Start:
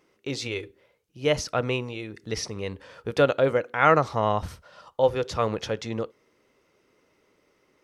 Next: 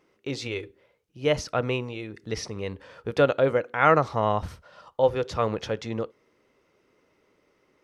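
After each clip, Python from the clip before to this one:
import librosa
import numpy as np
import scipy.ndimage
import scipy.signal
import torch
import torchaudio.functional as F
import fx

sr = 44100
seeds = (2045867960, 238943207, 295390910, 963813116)

y = fx.high_shelf(x, sr, hz=4500.0, db=-6.0)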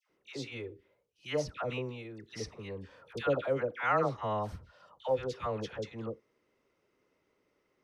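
y = fx.dispersion(x, sr, late='lows', ms=99.0, hz=1100.0)
y = y * 10.0 ** (-9.0 / 20.0)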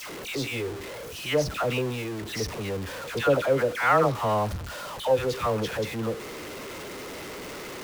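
y = x + 0.5 * 10.0 ** (-39.0 / 20.0) * np.sign(x)
y = y * 10.0 ** (7.0 / 20.0)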